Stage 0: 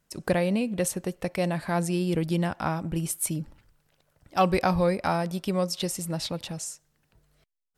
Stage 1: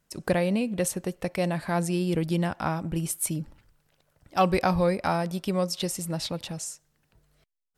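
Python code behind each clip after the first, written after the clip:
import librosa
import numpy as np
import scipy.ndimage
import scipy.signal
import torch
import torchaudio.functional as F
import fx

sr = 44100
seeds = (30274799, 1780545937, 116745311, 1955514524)

y = x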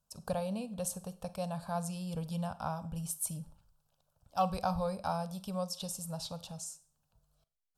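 y = fx.fixed_phaser(x, sr, hz=830.0, stages=4)
y = fx.rev_schroeder(y, sr, rt60_s=0.4, comb_ms=32, drr_db=15.0)
y = y * 10.0 ** (-6.5 / 20.0)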